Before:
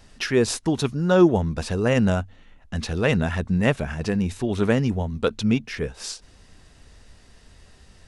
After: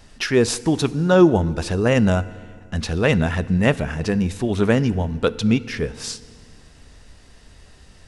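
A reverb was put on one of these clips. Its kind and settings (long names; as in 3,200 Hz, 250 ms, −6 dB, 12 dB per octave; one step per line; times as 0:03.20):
feedback delay network reverb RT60 2 s, low-frequency decay 1.25×, high-frequency decay 0.9×, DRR 17 dB
level +3 dB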